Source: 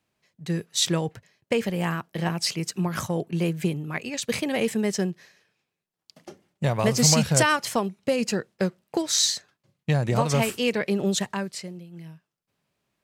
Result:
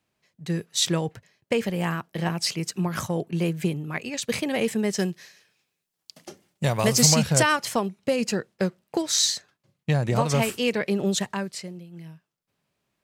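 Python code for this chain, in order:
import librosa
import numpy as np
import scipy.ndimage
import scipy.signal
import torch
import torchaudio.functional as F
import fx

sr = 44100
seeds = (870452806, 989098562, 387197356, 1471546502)

y = fx.high_shelf(x, sr, hz=fx.line((4.97, 2200.0), (7.04, 4100.0)), db=9.5, at=(4.97, 7.04), fade=0.02)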